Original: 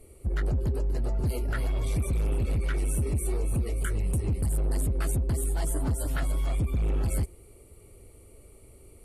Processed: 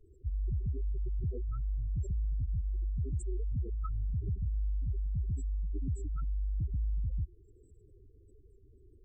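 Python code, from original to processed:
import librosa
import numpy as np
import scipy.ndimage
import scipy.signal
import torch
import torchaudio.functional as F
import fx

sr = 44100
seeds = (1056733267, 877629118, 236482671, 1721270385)

y = fx.formant_shift(x, sr, semitones=-3)
y = fx.spec_gate(y, sr, threshold_db=-15, keep='strong')
y = F.gain(torch.from_numpy(y), -6.0).numpy()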